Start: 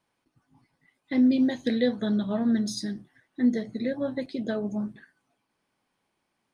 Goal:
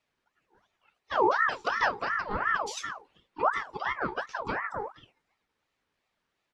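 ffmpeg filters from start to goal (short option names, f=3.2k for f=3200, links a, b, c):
-filter_complex "[0:a]acrossover=split=190 7700:gain=0.141 1 0.2[a][b][c];[a][b][c]amix=inputs=3:normalize=0,asplit=3[d][e][f];[e]asetrate=33038,aresample=44100,atempo=1.33484,volume=-7dB[g];[f]asetrate=52444,aresample=44100,atempo=0.840896,volume=-13dB[h];[d][g][h]amix=inputs=3:normalize=0,aeval=exprs='val(0)*sin(2*PI*1100*n/s+1100*0.45/2.8*sin(2*PI*2.8*n/s))':c=same"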